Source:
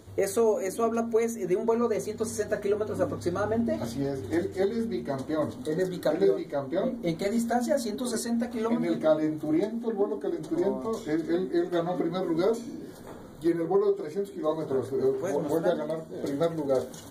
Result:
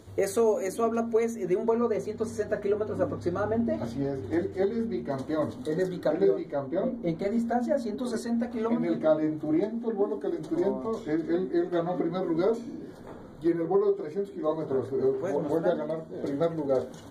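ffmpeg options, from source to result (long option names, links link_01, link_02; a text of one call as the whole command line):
ffmpeg -i in.wav -af "asetnsamples=nb_out_samples=441:pad=0,asendcmd='0.8 lowpass f 4200;1.7 lowpass f 2300;5.11 lowpass f 5900;5.93 lowpass f 2200;6.67 lowpass f 1400;7.99 lowpass f 2400;10.03 lowpass f 5500;10.71 lowpass f 2600',lowpass=frequency=9900:poles=1" out.wav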